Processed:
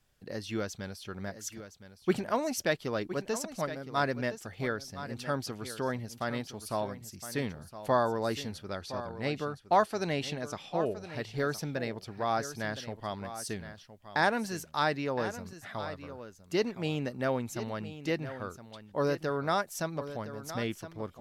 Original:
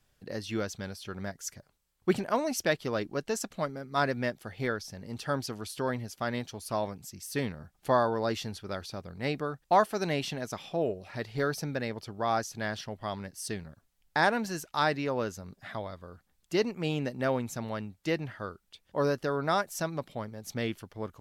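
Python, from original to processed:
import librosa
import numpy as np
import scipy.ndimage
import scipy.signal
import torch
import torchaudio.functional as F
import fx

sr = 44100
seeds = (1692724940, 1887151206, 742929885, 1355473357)

y = fx.lowpass(x, sr, hz=11000.0, slope=12, at=(8.68, 11.12))
y = y + 10.0 ** (-12.5 / 20.0) * np.pad(y, (int(1015 * sr / 1000.0), 0))[:len(y)]
y = y * librosa.db_to_amplitude(-1.5)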